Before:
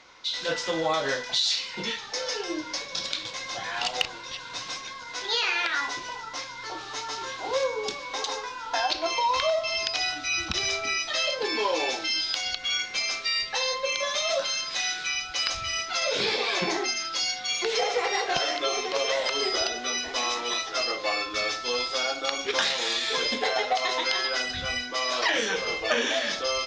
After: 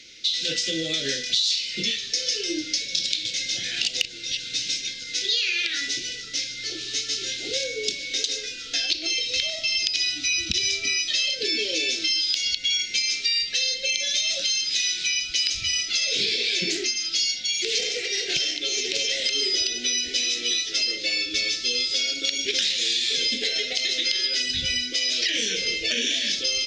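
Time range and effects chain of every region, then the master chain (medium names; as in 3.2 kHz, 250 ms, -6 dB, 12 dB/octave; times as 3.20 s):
16.70–19.11 s: tremolo 1.8 Hz, depth 41% + loudspeaker Doppler distortion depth 0.26 ms
whole clip: Chebyshev band-stop 350–2600 Hz, order 2; treble shelf 2.2 kHz +8.5 dB; compression 3:1, threshold -27 dBFS; trim +4.5 dB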